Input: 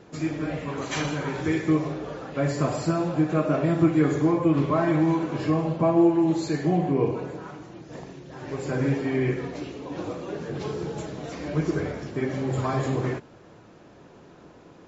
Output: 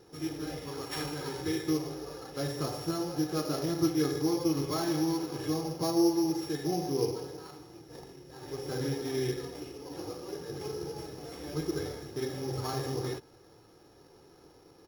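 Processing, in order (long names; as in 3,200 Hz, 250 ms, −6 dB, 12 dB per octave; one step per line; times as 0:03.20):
samples sorted by size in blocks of 8 samples
comb filter 2.4 ms, depth 53%
level −8.5 dB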